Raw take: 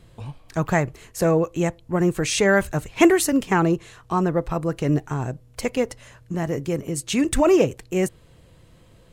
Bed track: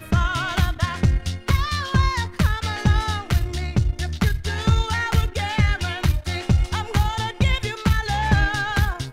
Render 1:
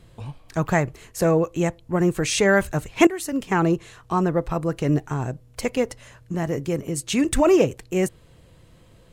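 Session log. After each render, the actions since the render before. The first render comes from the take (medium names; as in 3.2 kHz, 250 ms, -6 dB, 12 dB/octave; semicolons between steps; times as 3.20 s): 3.07–3.68 s: fade in, from -17 dB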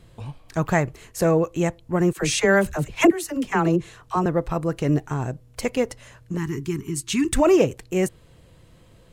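2.13–4.26 s: phase dispersion lows, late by 47 ms, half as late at 530 Hz; 6.37–7.33 s: elliptic band-stop 400–920 Hz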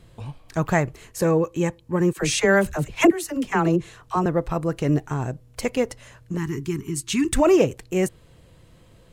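1.18–2.17 s: comb of notches 690 Hz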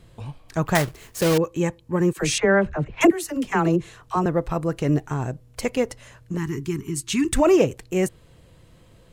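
0.75–1.38 s: block-companded coder 3-bit; 2.38–3.01 s: low-pass 2.1 kHz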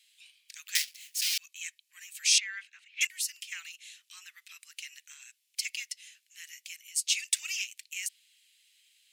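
steep high-pass 2.3 kHz 36 dB/octave; dynamic bell 5.1 kHz, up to +6 dB, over -48 dBFS, Q 2.6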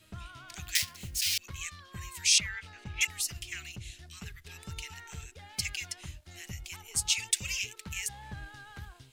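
add bed track -25 dB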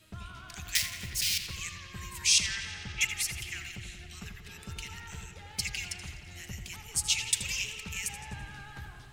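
feedback echo behind a low-pass 90 ms, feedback 78%, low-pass 2.9 kHz, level -9 dB; modulated delay 83 ms, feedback 56%, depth 152 cents, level -13 dB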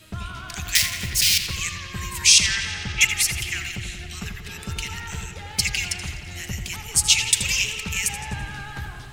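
trim +11 dB; peak limiter -2 dBFS, peak gain reduction 2.5 dB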